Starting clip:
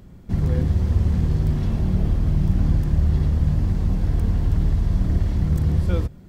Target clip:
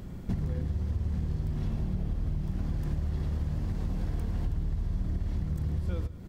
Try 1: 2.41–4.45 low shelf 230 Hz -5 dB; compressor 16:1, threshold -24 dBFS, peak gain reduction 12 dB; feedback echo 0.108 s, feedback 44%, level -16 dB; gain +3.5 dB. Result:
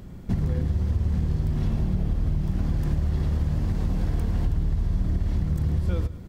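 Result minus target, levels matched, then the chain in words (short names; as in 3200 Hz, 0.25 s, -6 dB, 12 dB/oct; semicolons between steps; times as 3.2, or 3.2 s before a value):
compressor: peak gain reduction -6.5 dB
2.41–4.45 low shelf 230 Hz -5 dB; compressor 16:1, threshold -31 dBFS, peak gain reduction 18.5 dB; feedback echo 0.108 s, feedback 44%, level -16 dB; gain +3.5 dB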